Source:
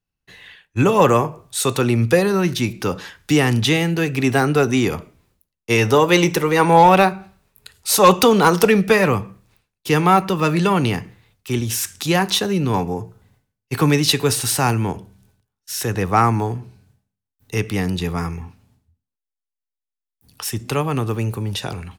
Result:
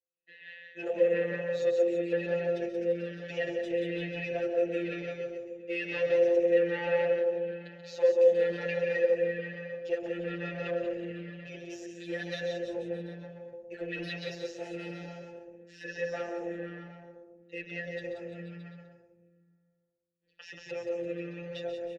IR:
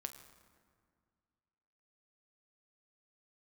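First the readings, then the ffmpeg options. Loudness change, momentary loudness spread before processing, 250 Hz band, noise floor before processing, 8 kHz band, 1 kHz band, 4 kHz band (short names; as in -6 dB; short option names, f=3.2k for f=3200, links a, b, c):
-13.5 dB, 14 LU, -18.5 dB, -85 dBFS, under -30 dB, -28.5 dB, -22.0 dB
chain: -filter_complex "[0:a]asplit=2[a][b];[b]bass=f=250:g=13,treble=f=4k:g=3[c];[1:a]atrim=start_sample=2205,adelay=133[d];[c][d]afir=irnorm=-1:irlink=0,volume=-6.5dB[e];[a][e]amix=inputs=2:normalize=0,afftfilt=real='hypot(re,im)*cos(PI*b)':imag='0':win_size=1024:overlap=0.75,alimiter=limit=-4dB:level=0:latency=1:release=191,aresample=16000,aresample=44100,asoftclip=type=tanh:threshold=-19dB,asubboost=boost=8.5:cutoff=53,asplit=3[f][g][h];[f]bandpass=f=530:t=q:w=8,volume=0dB[i];[g]bandpass=f=1.84k:t=q:w=8,volume=-6dB[j];[h]bandpass=f=2.48k:t=q:w=8,volume=-9dB[k];[i][j][k]amix=inputs=3:normalize=0,aecho=1:1:180|342|487.8|619|737.1:0.631|0.398|0.251|0.158|0.1,asplit=2[l][m];[m]adelay=5.6,afreqshift=-1.1[n];[l][n]amix=inputs=2:normalize=1,volume=7dB"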